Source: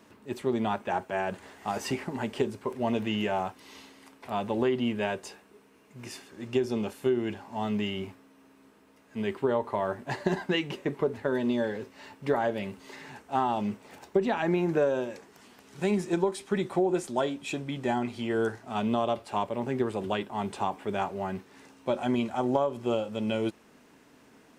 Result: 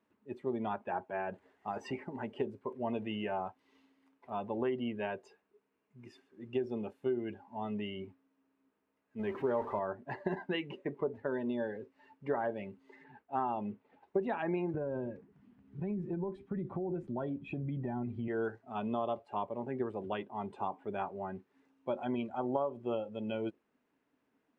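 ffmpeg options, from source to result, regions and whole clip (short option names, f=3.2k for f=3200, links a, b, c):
-filter_complex "[0:a]asettb=1/sr,asplit=3[a][b][c];[a]atrim=end=9.194[d];[b]atrim=start=9.19:end=9.79,asetpts=PTS-STARTPTS,afade=t=in:d=0.004:c=qsin,afade=t=out:st=0.596:d=0.004:c=qsin,aeval=exprs='val(0)+0.5*0.0251*sgn(val(0))':c=same,highshelf=f=3.4k:g=-3.5[e];[c]atrim=start=9.786[f];[d][e]acrossfade=d=0.004:c1=hsin:c2=qsin[g];[g][f]acrossfade=d=0.004:c1=qsin:c2=hsin,asettb=1/sr,asplit=3[h][i][j];[h]atrim=end=13.044[k];[i]atrim=start=13.04:end=14.08,asetpts=PTS-STARTPTS,afade=t=in:d=0.004:c=qsin,afade=t=out:st=1.036:d=0.004:c=qsin,lowpass=f=4.1k:w=0.5412,lowpass=f=4.1k:w=1.3066,agate=range=-33dB:threshold=-53dB:ratio=3:release=100:detection=peak[l];[j]atrim=start=14.076[m];[k][l]acrossfade=d=0.004:c1=hsin:c2=qsin[n];[n][m]acrossfade=d=0.004:c1=qsin:c2=hsin,asettb=1/sr,asplit=3[o][p][q];[o]atrim=end=14.744[r];[p]atrim=start=14.74:end=18.28,asetpts=PTS-STARTPTS,afade=t=in:d=0.004:c=qsin,afade=t=out:st=3.536:d=0.004:c=qsin,bass=f=250:g=15,treble=f=4k:g=-12,acompressor=threshold=-24dB:ratio=10:attack=3.2:release=140:knee=1:detection=peak[s];[q]atrim=start=18.276[t];[r][s]acrossfade=d=0.004:c1=hsin:c2=qsin[u];[u][t]acrossfade=d=0.004:c1=qsin:c2=hsin,afftdn=nr=14:nf=-39,bass=f=250:g=-3,treble=f=4k:g=-12,volume=-6.5dB"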